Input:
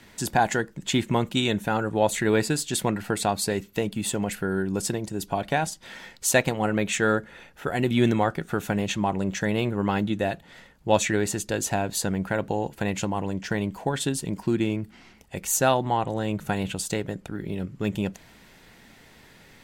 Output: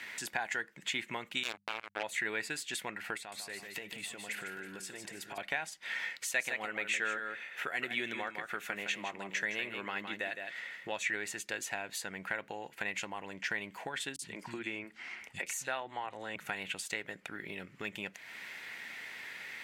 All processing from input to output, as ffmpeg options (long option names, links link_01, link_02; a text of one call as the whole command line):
ffmpeg -i in.wav -filter_complex "[0:a]asettb=1/sr,asplit=3[link_01][link_02][link_03];[link_01]atrim=end=1.434[link_04];[link_02]atrim=start=1.43:end=2.03,asetpts=PTS-STARTPTS,afade=type=in:duration=0.004:curve=qsin,afade=type=out:start_time=0.596:duration=0.004:curve=qsin,acrusher=bits=2:mix=0:aa=0.5,equalizer=frequency=1900:width_type=o:width=0.23:gain=-9,bandreject=frequency=50:width_type=h:width=6,bandreject=frequency=100:width_type=h:width=6,bandreject=frequency=150:width_type=h:width=6,bandreject=frequency=200:width_type=h:width=6[link_05];[link_03]atrim=start=2.026[link_06];[link_04][link_05]acrossfade=duration=0.004:curve1=hsin:curve2=qsin[link_07];[link_07][link_06]acrossfade=duration=0.004:curve1=qsin:curve2=hsin,asettb=1/sr,asplit=3[link_08][link_09][link_10];[link_08]atrim=end=3.174[link_11];[link_09]atrim=start=3.17:end=5.38,asetpts=PTS-STARTPTS,afade=type=in:duration=0.004:curve=qsin,afade=type=out:start_time=2.206:duration=0.004:curve=qsin,acompressor=threshold=-35dB:ratio=5:attack=3.2:release=140:knee=1:detection=peak,aecho=1:1:150|323|810|828:0.376|0.158|0.112|0.106,atrim=end_sample=97461[link_12];[link_10]atrim=start=5.376[link_13];[link_11][link_12]acrossfade=duration=0.004:curve1=hsin:curve2=qsin[link_14];[link_14][link_13]acrossfade=duration=0.004:curve1=qsin:curve2=hsin,asettb=1/sr,asplit=3[link_15][link_16][link_17];[link_15]atrim=end=6.104[link_18];[link_16]atrim=start=6.1:end=10.92,asetpts=PTS-STARTPTS,afade=type=in:duration=0.004:curve=qsin,afade=type=out:start_time=4.816:duration=0.004:curve=qsin,highpass=frequency=170:poles=1,equalizer=frequency=860:width=4.2:gain=-3.5,aecho=1:1:161:0.376,atrim=end_sample=212562[link_19];[link_17]atrim=start=10.916[link_20];[link_18][link_19]acrossfade=duration=0.004:curve1=hsin:curve2=qsin[link_21];[link_21][link_20]acrossfade=duration=0.004:curve1=qsin:curve2=hsin,asettb=1/sr,asplit=3[link_22][link_23][link_24];[link_22]atrim=end=14.164[link_25];[link_23]atrim=start=14.16:end=16.36,asetpts=PTS-STARTPTS,afade=type=in:duration=0.004:curve=qsin,afade=type=out:start_time=2.196:duration=0.004:curve=qsin,lowpass=11000,acrossover=split=190|3500[link_26][link_27][link_28];[link_28]adelay=30[link_29];[link_27]adelay=60[link_30];[link_26][link_30][link_29]amix=inputs=3:normalize=0,atrim=end_sample=97020[link_31];[link_24]atrim=start=16.356[link_32];[link_25][link_31]acrossfade=duration=0.004:curve1=hsin:curve2=qsin[link_33];[link_33][link_32]acrossfade=duration=0.004:curve1=qsin:curve2=hsin,highpass=frequency=630:poles=1,acompressor=threshold=-46dB:ratio=2.5,equalizer=frequency=2100:width=1.2:gain=13.5" out.wav